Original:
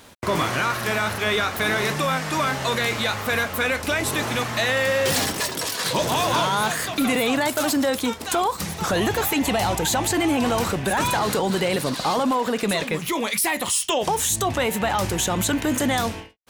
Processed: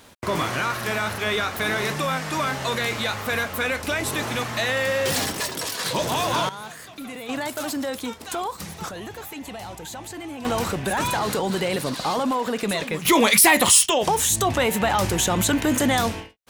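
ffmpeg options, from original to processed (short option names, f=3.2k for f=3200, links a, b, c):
-af "asetnsamples=n=441:p=0,asendcmd='6.49 volume volume -14.5dB;7.29 volume volume -6.5dB;8.89 volume volume -14dB;10.45 volume volume -2dB;13.05 volume volume 8dB;13.86 volume volume 1.5dB',volume=-2dB"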